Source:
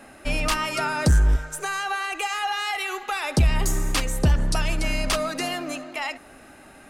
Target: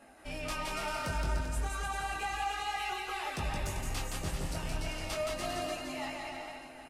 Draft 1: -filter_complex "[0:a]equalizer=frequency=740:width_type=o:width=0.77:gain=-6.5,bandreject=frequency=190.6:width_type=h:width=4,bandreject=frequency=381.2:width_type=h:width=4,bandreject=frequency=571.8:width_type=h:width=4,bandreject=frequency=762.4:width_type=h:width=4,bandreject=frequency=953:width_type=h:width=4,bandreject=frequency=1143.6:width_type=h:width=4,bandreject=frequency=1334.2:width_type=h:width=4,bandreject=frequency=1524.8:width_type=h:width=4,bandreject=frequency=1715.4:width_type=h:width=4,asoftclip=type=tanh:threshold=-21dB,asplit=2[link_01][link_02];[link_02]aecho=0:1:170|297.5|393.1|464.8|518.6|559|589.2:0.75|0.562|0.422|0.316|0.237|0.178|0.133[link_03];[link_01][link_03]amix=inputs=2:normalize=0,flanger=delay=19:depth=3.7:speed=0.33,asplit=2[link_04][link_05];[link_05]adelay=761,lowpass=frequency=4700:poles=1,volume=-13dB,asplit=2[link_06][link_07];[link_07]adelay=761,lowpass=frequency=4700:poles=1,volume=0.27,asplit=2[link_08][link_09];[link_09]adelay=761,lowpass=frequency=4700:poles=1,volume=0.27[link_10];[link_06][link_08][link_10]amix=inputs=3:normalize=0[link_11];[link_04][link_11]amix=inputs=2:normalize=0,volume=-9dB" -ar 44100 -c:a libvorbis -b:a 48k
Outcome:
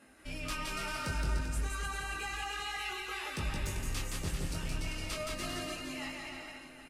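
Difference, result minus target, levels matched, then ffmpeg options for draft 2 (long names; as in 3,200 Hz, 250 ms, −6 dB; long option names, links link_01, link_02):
1,000 Hz band −4.5 dB
-filter_complex "[0:a]equalizer=frequency=740:width_type=o:width=0.77:gain=5,bandreject=frequency=190.6:width_type=h:width=4,bandreject=frequency=381.2:width_type=h:width=4,bandreject=frequency=571.8:width_type=h:width=4,bandreject=frequency=762.4:width_type=h:width=4,bandreject=frequency=953:width_type=h:width=4,bandreject=frequency=1143.6:width_type=h:width=4,bandreject=frequency=1334.2:width_type=h:width=4,bandreject=frequency=1524.8:width_type=h:width=4,bandreject=frequency=1715.4:width_type=h:width=4,asoftclip=type=tanh:threshold=-21dB,asplit=2[link_01][link_02];[link_02]aecho=0:1:170|297.5|393.1|464.8|518.6|559|589.2:0.75|0.562|0.422|0.316|0.237|0.178|0.133[link_03];[link_01][link_03]amix=inputs=2:normalize=0,flanger=delay=19:depth=3.7:speed=0.33,asplit=2[link_04][link_05];[link_05]adelay=761,lowpass=frequency=4700:poles=1,volume=-13dB,asplit=2[link_06][link_07];[link_07]adelay=761,lowpass=frequency=4700:poles=1,volume=0.27,asplit=2[link_08][link_09];[link_09]adelay=761,lowpass=frequency=4700:poles=1,volume=0.27[link_10];[link_06][link_08][link_10]amix=inputs=3:normalize=0[link_11];[link_04][link_11]amix=inputs=2:normalize=0,volume=-9dB" -ar 44100 -c:a libvorbis -b:a 48k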